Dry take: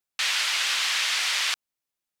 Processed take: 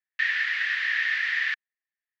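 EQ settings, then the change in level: resonant high-pass 1800 Hz, resonance Q 14; air absorption 220 m; high shelf 7400 Hz -6.5 dB; -8.0 dB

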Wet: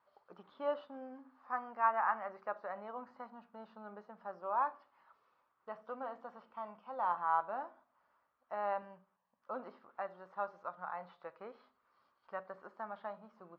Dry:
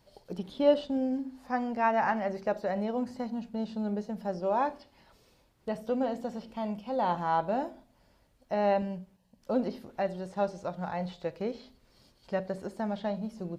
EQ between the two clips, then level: band-pass 1200 Hz, Q 5; air absorption 110 m; +5.5 dB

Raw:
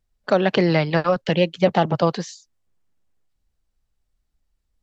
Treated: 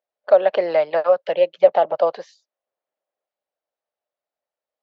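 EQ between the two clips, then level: resonant high-pass 590 Hz, resonance Q 4.5; air absorption 190 m; -5.0 dB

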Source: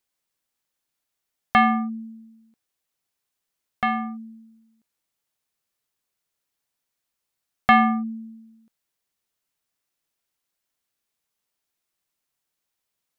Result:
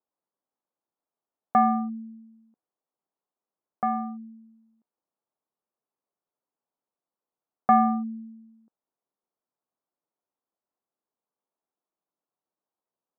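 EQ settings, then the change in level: HPF 220 Hz 12 dB/oct; LPF 1100 Hz 24 dB/oct; 0.0 dB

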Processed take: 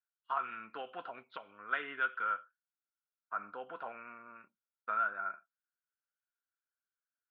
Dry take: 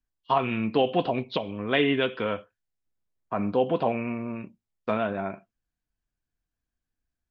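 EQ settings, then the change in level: band-pass 1400 Hz, Q 12; +6.5 dB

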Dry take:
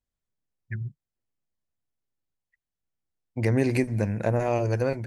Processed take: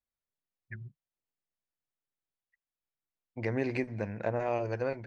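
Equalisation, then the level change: air absorption 190 m; low shelf 300 Hz -11 dB; -2.5 dB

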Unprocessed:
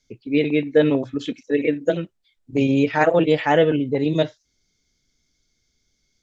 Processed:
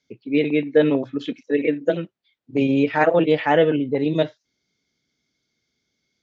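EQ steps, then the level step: BPF 140–4100 Hz; 0.0 dB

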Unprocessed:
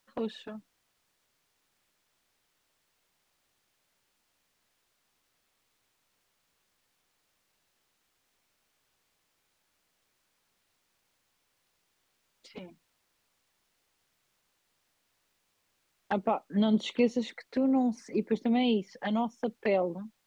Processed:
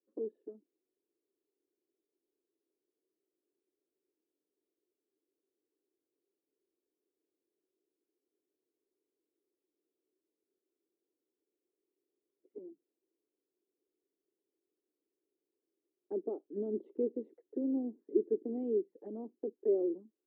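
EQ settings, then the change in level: Butterworth band-pass 360 Hz, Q 3; +4.0 dB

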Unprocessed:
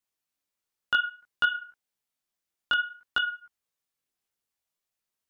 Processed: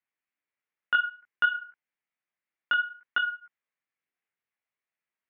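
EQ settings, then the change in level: HPF 130 Hz; synth low-pass 2100 Hz, resonance Q 2.8; -4.0 dB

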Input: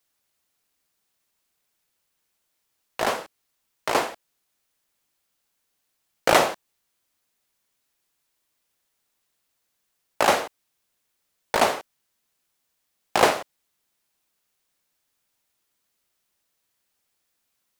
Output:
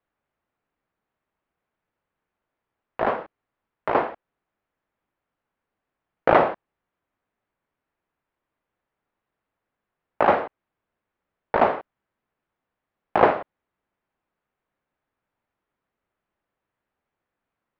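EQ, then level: LPF 1700 Hz 12 dB/oct; air absorption 210 m; +3.0 dB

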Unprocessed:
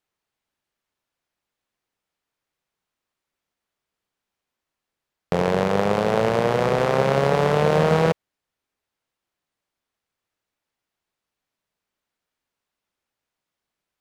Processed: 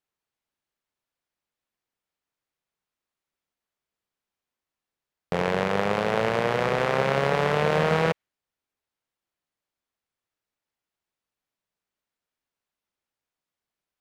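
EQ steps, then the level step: dynamic EQ 2100 Hz, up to +7 dB, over -38 dBFS, Q 0.71; -5.5 dB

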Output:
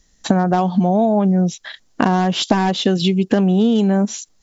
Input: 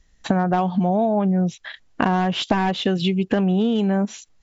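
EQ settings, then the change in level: EQ curve 100 Hz 0 dB, 220 Hz +7 dB, 2600 Hz +2 dB, 5300 Hz +12 dB; -1.5 dB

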